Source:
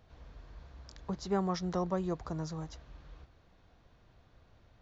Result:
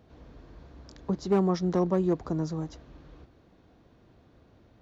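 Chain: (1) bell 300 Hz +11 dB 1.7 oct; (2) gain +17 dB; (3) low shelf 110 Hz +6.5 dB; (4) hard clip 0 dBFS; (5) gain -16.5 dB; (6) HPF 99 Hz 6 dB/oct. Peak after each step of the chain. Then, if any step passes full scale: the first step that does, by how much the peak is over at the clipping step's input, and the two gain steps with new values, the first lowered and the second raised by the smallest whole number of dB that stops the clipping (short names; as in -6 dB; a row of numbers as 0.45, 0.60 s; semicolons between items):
-12.5, +4.5, +5.0, 0.0, -16.5, -14.0 dBFS; step 2, 5.0 dB; step 2 +12 dB, step 5 -11.5 dB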